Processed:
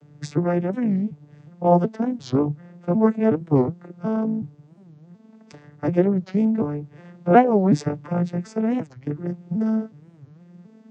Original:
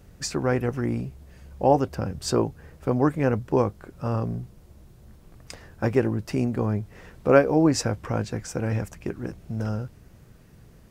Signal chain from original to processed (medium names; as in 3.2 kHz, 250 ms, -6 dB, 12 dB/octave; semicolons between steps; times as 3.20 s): vocoder on a broken chord minor triad, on D3, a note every 367 ms; warped record 45 rpm, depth 250 cents; trim +4 dB